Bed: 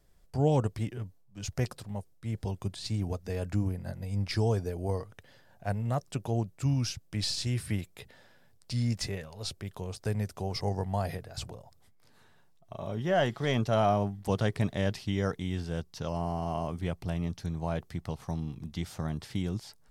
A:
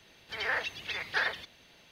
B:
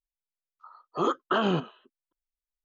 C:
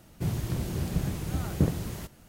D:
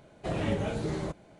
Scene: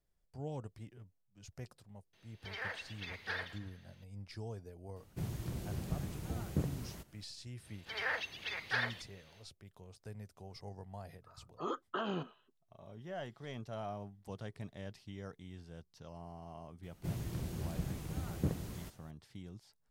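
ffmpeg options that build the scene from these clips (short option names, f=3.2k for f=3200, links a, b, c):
-filter_complex "[1:a]asplit=2[a][b];[3:a]asplit=2[c][d];[0:a]volume=-17dB[e];[a]aecho=1:1:111|222|333|444|555:0.158|0.0856|0.0462|0.025|0.0135,atrim=end=1.91,asetpts=PTS-STARTPTS,volume=-10.5dB,afade=t=in:d=0.004:c=hsin,afade=t=out:st=1.906:d=0.004:c=hsin,adelay=2130[f];[c]atrim=end=2.28,asetpts=PTS-STARTPTS,volume=-10dB,afade=t=in:d=0.004:c=hsin,afade=t=out:st=2.276:d=0.004:c=hsin,adelay=4960[g];[b]atrim=end=1.91,asetpts=PTS-STARTPTS,volume=-5dB,afade=t=in:d=0.1,afade=t=out:st=1.81:d=0.1,adelay=7570[h];[2:a]atrim=end=2.64,asetpts=PTS-STARTPTS,volume=-12.5dB,afade=t=in:d=0.004:c=hsin,afade=t=out:st=2.636:d=0.004:c=hsin,adelay=10630[i];[d]atrim=end=2.28,asetpts=PTS-STARTPTS,volume=-9.5dB,afade=t=in:d=0.004:c=hsin,afade=t=out:st=2.276:d=0.004:c=hsin,adelay=16830[j];[e][f][g][h][i][j]amix=inputs=6:normalize=0"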